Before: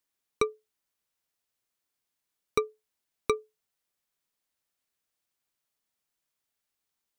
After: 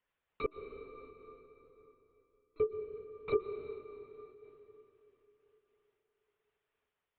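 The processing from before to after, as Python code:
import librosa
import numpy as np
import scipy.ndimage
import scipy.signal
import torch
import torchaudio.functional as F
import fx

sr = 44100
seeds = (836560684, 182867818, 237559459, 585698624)

y = fx.wiener(x, sr, points=9)
y = scipy.signal.sosfilt(scipy.signal.butter(2, 200.0, 'highpass', fs=sr, output='sos'), y)
y = fx.peak_eq(y, sr, hz=2500.0, db=2.5, octaves=0.98)
y = fx.hum_notches(y, sr, base_hz=60, count=8)
y = fx.over_compress(y, sr, threshold_db=-30.0, ratio=-0.5)
y = fx.lpc_vocoder(y, sr, seeds[0], excitation='whisper', order=16)
y = fx.stiff_resonator(y, sr, f0_hz=300.0, decay_s=0.33, stiffness=0.03, at=(0.46, 2.6))
y = fx.rev_plate(y, sr, seeds[1], rt60_s=3.9, hf_ratio=0.7, predelay_ms=105, drr_db=7.5)
y = fx.am_noise(y, sr, seeds[2], hz=5.7, depth_pct=55)
y = y * 10.0 ** (4.0 / 20.0)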